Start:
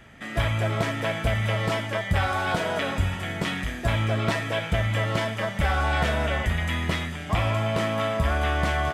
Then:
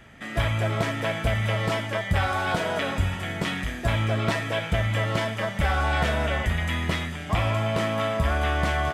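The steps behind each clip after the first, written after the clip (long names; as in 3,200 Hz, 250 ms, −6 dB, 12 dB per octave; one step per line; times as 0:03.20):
no processing that can be heard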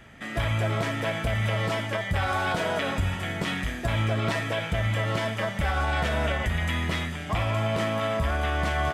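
brickwall limiter −17 dBFS, peak gain reduction 4.5 dB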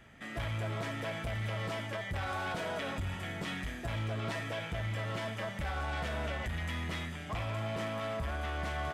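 soft clipping −22.5 dBFS, distortion −16 dB
level −7.5 dB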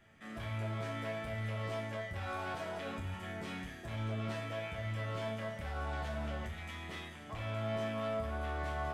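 resonators tuned to a chord D2 major, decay 0.36 s
level +6 dB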